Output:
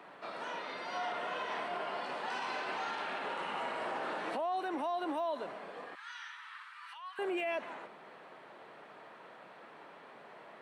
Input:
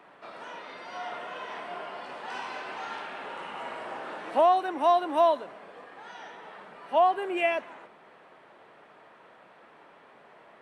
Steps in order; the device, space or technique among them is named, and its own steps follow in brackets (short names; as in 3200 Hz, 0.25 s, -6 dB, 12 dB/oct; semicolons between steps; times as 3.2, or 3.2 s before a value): broadcast voice chain (HPF 110 Hz 24 dB/oct; de-esser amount 100%; compressor, threshold -26 dBFS, peak gain reduction 8.5 dB; bell 4200 Hz +3.5 dB 0.24 oct; limiter -29.5 dBFS, peak gain reduction 10.5 dB); 5.95–7.19 steep high-pass 1100 Hz 48 dB/oct; gain +1 dB